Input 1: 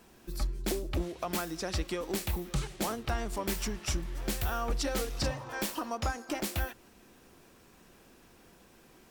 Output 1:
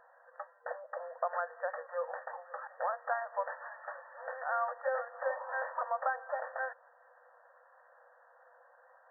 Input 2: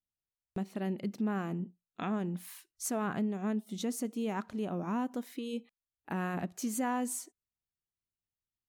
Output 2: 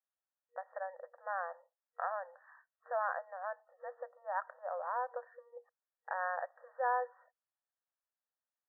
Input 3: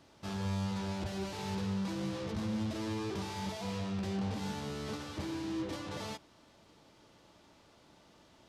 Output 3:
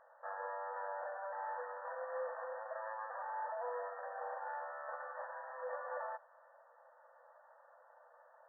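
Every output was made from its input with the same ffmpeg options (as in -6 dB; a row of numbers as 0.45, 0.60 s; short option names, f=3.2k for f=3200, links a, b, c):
-af "afftfilt=real='re*between(b*sr/4096,480,1900)':imag='im*between(b*sr/4096,480,1900)':win_size=4096:overlap=0.75,volume=3dB"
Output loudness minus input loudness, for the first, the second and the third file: -3.0, -4.0, -6.0 LU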